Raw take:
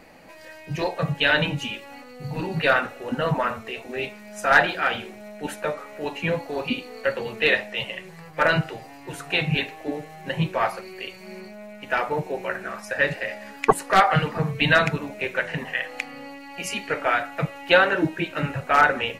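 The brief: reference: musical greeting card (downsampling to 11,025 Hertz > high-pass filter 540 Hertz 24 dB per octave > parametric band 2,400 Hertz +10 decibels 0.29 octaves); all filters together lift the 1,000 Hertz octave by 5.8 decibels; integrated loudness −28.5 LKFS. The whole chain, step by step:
parametric band 1,000 Hz +8 dB
downsampling to 11,025 Hz
high-pass filter 540 Hz 24 dB per octave
parametric band 2,400 Hz +10 dB 0.29 octaves
level −9 dB

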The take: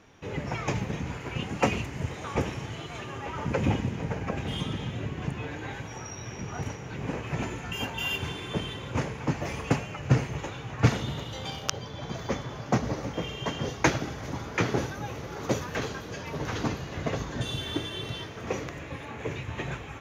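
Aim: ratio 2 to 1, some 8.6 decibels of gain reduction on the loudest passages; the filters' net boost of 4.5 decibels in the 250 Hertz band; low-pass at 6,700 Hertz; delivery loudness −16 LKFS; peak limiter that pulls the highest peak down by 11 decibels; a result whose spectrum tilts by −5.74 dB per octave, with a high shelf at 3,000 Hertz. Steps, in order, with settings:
low-pass filter 6,700 Hz
parametric band 250 Hz +6 dB
high-shelf EQ 3,000 Hz −8 dB
downward compressor 2 to 1, threshold −29 dBFS
level +19 dB
brickwall limiter −4 dBFS

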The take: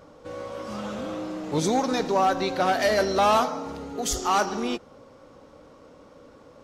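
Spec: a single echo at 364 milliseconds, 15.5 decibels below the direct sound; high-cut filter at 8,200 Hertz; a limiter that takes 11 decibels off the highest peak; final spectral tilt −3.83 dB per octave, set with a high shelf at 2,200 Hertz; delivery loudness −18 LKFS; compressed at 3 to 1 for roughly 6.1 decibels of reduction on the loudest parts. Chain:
low-pass filter 8,200 Hz
high-shelf EQ 2,200 Hz +4.5 dB
downward compressor 3 to 1, threshold −25 dBFS
brickwall limiter −26 dBFS
single-tap delay 364 ms −15.5 dB
level +16.5 dB

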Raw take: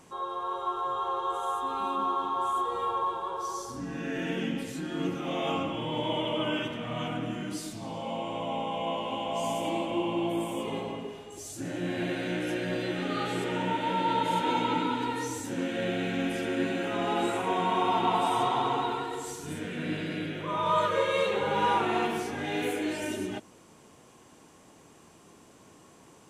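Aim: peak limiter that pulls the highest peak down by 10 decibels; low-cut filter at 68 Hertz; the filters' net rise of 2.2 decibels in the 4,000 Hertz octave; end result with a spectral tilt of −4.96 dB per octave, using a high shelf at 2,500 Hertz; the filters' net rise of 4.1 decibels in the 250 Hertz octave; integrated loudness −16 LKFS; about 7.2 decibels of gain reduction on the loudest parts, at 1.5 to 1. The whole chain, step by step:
high-pass filter 68 Hz
parametric band 250 Hz +5.5 dB
high-shelf EQ 2,500 Hz −3.5 dB
parametric band 4,000 Hz +6 dB
downward compressor 1.5 to 1, threshold −42 dBFS
level +23.5 dB
brickwall limiter −7.5 dBFS

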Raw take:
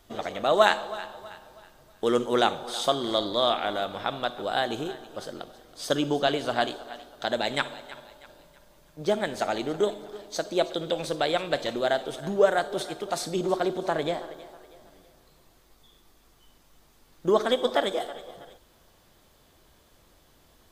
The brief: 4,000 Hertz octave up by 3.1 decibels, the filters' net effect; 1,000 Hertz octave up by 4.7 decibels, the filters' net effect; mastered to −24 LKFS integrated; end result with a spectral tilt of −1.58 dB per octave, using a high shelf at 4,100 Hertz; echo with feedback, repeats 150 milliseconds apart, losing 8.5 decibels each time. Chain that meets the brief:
parametric band 1,000 Hz +7 dB
parametric band 4,000 Hz +7.5 dB
high-shelf EQ 4,100 Hz −8.5 dB
repeating echo 150 ms, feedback 38%, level −8.5 dB

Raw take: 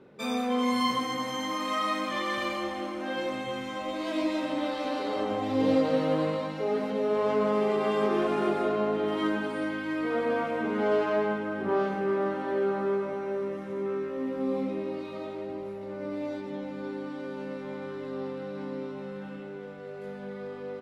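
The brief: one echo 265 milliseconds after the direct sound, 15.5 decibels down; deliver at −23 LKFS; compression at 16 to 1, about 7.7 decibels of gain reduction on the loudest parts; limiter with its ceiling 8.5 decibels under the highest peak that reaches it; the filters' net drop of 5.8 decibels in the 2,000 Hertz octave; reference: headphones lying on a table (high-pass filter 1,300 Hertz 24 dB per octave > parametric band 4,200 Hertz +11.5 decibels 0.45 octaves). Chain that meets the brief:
parametric band 2,000 Hz −7.5 dB
downward compressor 16 to 1, threshold −28 dBFS
brickwall limiter −29.5 dBFS
high-pass filter 1,300 Hz 24 dB per octave
parametric band 4,200 Hz +11.5 dB 0.45 octaves
single-tap delay 265 ms −15.5 dB
level +22.5 dB

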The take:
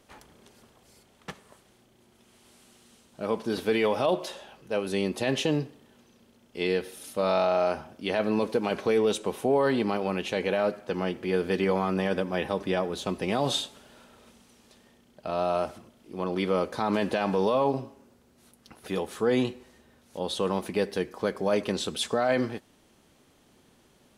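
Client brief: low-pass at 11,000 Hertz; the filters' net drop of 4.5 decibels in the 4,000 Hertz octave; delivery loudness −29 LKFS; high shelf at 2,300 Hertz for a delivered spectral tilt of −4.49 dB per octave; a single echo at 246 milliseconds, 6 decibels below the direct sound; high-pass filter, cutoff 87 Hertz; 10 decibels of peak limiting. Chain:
high-pass filter 87 Hz
low-pass filter 11,000 Hz
high-shelf EQ 2,300 Hz −3 dB
parametric band 4,000 Hz −3 dB
brickwall limiter −23.5 dBFS
single-tap delay 246 ms −6 dB
level +4.5 dB

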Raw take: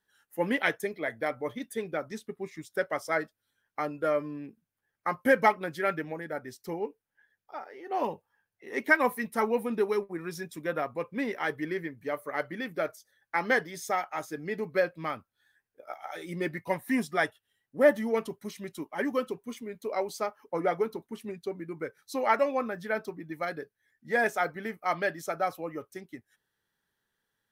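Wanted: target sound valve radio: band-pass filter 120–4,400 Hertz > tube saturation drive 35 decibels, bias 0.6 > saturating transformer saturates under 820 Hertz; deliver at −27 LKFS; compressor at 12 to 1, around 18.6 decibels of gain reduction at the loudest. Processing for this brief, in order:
downward compressor 12 to 1, threshold −35 dBFS
band-pass filter 120–4,400 Hz
tube saturation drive 35 dB, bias 0.6
saturating transformer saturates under 820 Hz
level +23.5 dB

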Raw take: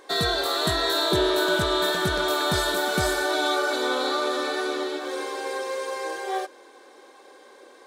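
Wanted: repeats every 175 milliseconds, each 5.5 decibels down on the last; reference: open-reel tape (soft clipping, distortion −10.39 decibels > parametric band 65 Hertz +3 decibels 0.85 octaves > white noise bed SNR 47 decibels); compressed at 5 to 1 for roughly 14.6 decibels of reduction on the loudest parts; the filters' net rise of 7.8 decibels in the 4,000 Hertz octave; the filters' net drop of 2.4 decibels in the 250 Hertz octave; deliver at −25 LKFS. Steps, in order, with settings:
parametric band 250 Hz −4.5 dB
parametric band 4,000 Hz +8.5 dB
downward compressor 5 to 1, threshold −33 dBFS
repeating echo 175 ms, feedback 53%, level −5.5 dB
soft clipping −34 dBFS
parametric band 65 Hz +3 dB 0.85 octaves
white noise bed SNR 47 dB
level +11.5 dB

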